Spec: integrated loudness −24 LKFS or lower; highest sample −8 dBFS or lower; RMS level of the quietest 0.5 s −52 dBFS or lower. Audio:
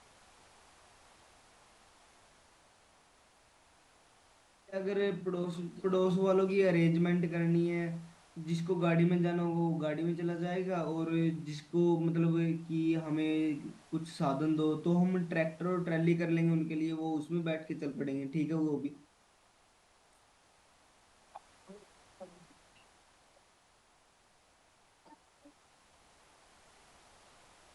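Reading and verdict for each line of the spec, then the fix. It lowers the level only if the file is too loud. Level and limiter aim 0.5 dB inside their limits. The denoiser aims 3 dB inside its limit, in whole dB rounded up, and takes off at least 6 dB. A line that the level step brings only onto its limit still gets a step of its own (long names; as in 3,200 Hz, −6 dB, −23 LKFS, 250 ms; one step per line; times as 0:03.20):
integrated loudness −32.5 LKFS: in spec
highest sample −17.5 dBFS: in spec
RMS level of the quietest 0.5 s −67 dBFS: in spec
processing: no processing needed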